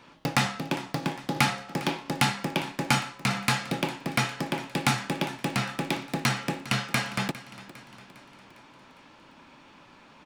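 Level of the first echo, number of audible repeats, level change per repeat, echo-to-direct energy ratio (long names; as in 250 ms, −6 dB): −17.0 dB, 4, −5.0 dB, −15.5 dB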